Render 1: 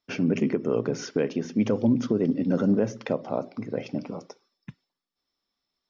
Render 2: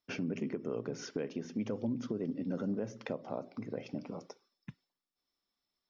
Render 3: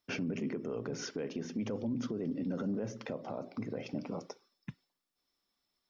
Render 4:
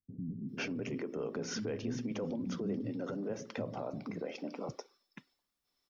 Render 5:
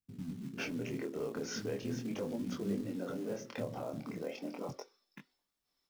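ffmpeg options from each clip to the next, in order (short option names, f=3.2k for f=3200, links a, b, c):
-af "acompressor=threshold=-33dB:ratio=2,volume=-5dB"
-af "alimiter=level_in=8dB:limit=-24dB:level=0:latency=1:release=14,volume=-8dB,volume=4dB"
-filter_complex "[0:a]acrossover=split=230[a][b];[b]adelay=490[c];[a][c]amix=inputs=2:normalize=0,volume=1dB"
-af "acrusher=bits=5:mode=log:mix=0:aa=0.000001,flanger=delay=20:depth=6.5:speed=0.38,volume=2dB"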